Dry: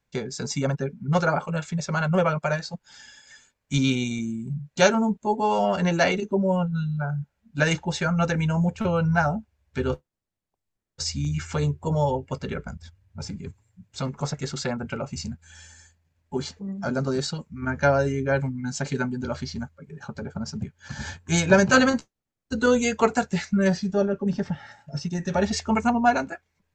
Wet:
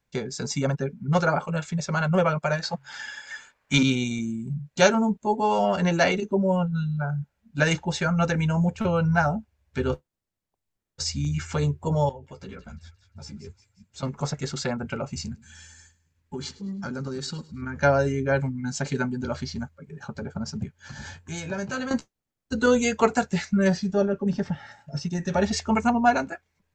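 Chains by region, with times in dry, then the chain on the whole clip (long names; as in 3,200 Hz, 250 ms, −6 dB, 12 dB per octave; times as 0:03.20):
0:02.63–0:03.83: parametric band 1,300 Hz +14.5 dB 2.9 octaves + hum removal 45.29 Hz, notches 3
0:12.09–0:14.03: downward compressor 5 to 1, threshold −33 dBFS + delay with a high-pass on its return 176 ms, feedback 47%, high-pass 1,900 Hz, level −10.5 dB + string-ensemble chorus
0:15.24–0:17.76: parametric band 660 Hz −13 dB 0.39 octaves + downward compressor, threshold −28 dBFS + repeating echo 104 ms, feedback 40%, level −20 dB
0:20.77–0:21.91: downward compressor 2 to 1, threshold −39 dBFS + double-tracking delay 20 ms −10.5 dB
whole clip: no processing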